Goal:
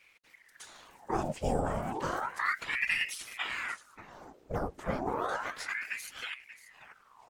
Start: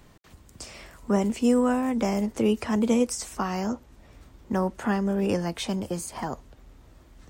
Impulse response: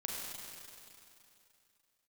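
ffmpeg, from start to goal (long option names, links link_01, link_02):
-filter_complex "[0:a]asplit=2[link_01][link_02];[link_02]asetrate=29433,aresample=44100,atempo=1.49831,volume=-15dB[link_03];[link_01][link_03]amix=inputs=2:normalize=0,afftfilt=real='hypot(re,im)*cos(2*PI*random(0))':imag='hypot(re,im)*sin(2*PI*random(1))':win_size=512:overlap=0.75,aecho=1:1:584:0.188,aeval=exprs='val(0)*sin(2*PI*1300*n/s+1300*0.8/0.32*sin(2*PI*0.32*n/s))':channel_layout=same"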